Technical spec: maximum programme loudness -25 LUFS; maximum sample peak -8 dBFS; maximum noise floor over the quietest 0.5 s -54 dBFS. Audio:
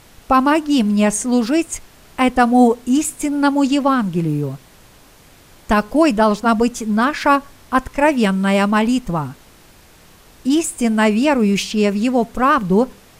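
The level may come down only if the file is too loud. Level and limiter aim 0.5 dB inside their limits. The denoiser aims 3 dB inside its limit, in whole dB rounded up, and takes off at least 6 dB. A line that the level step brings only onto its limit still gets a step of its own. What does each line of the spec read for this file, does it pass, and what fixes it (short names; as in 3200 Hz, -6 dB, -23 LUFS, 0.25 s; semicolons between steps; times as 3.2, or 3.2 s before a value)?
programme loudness -16.5 LUFS: fail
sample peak -3.5 dBFS: fail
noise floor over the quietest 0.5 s -47 dBFS: fail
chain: gain -9 dB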